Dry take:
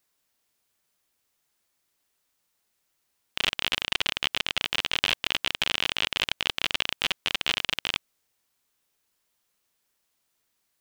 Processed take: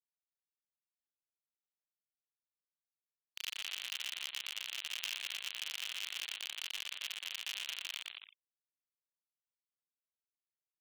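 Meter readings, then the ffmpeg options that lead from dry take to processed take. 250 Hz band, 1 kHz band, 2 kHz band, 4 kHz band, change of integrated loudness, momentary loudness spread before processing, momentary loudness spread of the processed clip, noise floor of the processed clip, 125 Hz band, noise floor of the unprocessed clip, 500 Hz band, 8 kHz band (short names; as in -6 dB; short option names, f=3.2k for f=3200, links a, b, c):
under -30 dB, -20.5 dB, -14.5 dB, -13.0 dB, -13.5 dB, 3 LU, 5 LU, under -85 dBFS, under -35 dB, -76 dBFS, -26.0 dB, -6.0 dB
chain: -filter_complex "[0:a]firequalizer=gain_entry='entry(690,0);entry(4300,-7);entry(6200,-26)':delay=0.05:min_phase=1,asplit=2[a][b];[b]aecho=0:1:120|210|277.5|328.1|366.1:0.631|0.398|0.251|0.158|0.1[c];[a][c]amix=inputs=2:normalize=0,afftfilt=real='re*gte(hypot(re,im),0.00794)':imag='im*gte(hypot(re,im),0.00794)':win_size=1024:overlap=0.75,aeval=exprs='clip(val(0),-1,0.106)':c=same,aderivative,volume=-2dB"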